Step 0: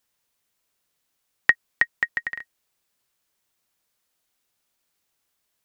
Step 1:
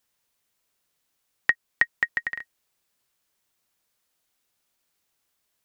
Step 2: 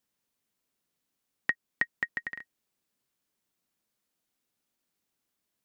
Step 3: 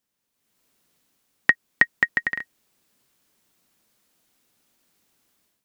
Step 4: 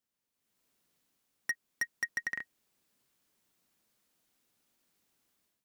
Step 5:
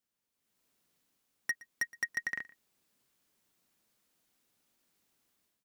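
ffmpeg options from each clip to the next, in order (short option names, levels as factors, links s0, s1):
-af "alimiter=limit=0.501:level=0:latency=1:release=384"
-af "equalizer=f=230:t=o:w=1.6:g=9.5,volume=0.422"
-af "dynaudnorm=f=320:g=3:m=4.47,volume=1.12"
-af "asoftclip=type=hard:threshold=0.119,volume=0.398"
-af "aecho=1:1:118:0.0891"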